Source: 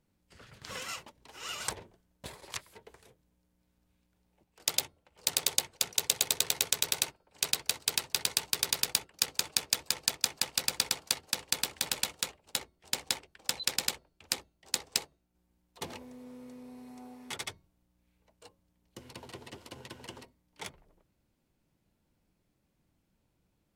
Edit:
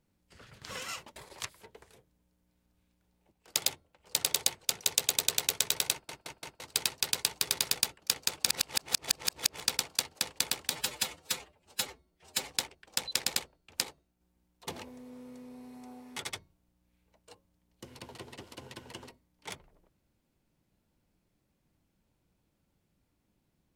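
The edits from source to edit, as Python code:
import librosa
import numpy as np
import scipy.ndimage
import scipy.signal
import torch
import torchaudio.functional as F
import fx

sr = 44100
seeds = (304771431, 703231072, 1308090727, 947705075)

y = fx.edit(x, sr, fx.cut(start_s=1.16, length_s=1.12),
    fx.stutter_over(start_s=7.04, slice_s=0.17, count=4),
    fx.reverse_span(start_s=9.59, length_s=1.13),
    fx.stretch_span(start_s=11.82, length_s=1.2, factor=1.5),
    fx.cut(start_s=14.38, length_s=0.62), tone=tone)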